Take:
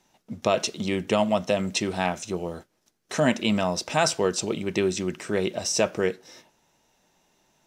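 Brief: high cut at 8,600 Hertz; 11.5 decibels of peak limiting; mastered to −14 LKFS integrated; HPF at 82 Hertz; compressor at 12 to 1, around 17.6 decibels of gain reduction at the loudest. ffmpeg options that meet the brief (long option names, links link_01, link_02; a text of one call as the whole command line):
ffmpeg -i in.wav -af "highpass=82,lowpass=8600,acompressor=threshold=-35dB:ratio=12,volume=27.5dB,alimiter=limit=-1.5dB:level=0:latency=1" out.wav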